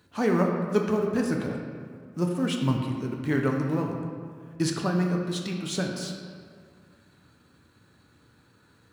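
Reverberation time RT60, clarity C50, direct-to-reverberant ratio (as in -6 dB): 2.1 s, 3.0 dB, 0.5 dB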